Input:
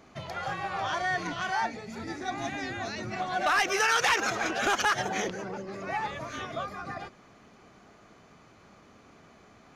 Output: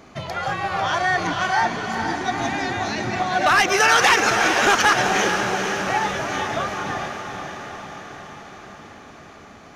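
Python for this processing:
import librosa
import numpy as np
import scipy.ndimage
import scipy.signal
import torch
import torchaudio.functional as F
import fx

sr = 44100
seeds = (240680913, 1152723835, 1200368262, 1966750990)

y = fx.echo_diffused(x, sr, ms=458, feedback_pct=65, wet_db=-6.5)
y = y * 10.0 ** (8.5 / 20.0)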